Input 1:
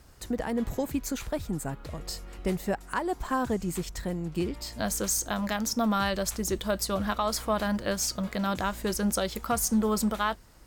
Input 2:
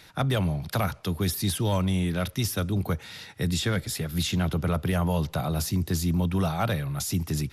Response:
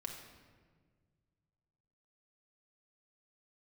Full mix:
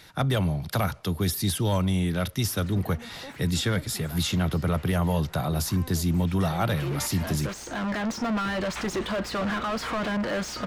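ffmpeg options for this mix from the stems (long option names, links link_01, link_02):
-filter_complex "[0:a]equalizer=frequency=2200:width=0.32:gain=14.5,acrossover=split=340[link_01][link_02];[link_02]acompressor=threshold=-34dB:ratio=6[link_03];[link_01][link_03]amix=inputs=2:normalize=0,asplit=2[link_04][link_05];[link_05]highpass=frequency=720:poles=1,volume=33dB,asoftclip=type=tanh:threshold=-16dB[link_06];[link_04][link_06]amix=inputs=2:normalize=0,lowpass=frequency=1600:poles=1,volume=-6dB,adelay=2450,volume=-3.5dB,afade=type=in:start_time=6.27:duration=0.61:silence=0.298538[link_07];[1:a]bandreject=frequency=2500:width=22,volume=1dB,asplit=2[link_08][link_09];[link_09]apad=whole_len=578585[link_10];[link_07][link_10]sidechaincompress=threshold=-26dB:ratio=8:attack=5.1:release=1280[link_11];[link_11][link_08]amix=inputs=2:normalize=0,asoftclip=type=tanh:threshold=-10.5dB"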